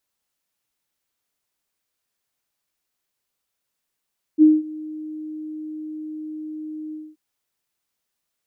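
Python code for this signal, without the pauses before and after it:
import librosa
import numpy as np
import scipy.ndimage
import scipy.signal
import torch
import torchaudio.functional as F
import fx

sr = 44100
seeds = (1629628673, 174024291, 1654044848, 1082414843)

y = fx.adsr_tone(sr, wave='sine', hz=309.0, attack_ms=42.0, decay_ms=201.0, sustain_db=-22.5, held_s=2.55, release_ms=229.0, level_db=-7.0)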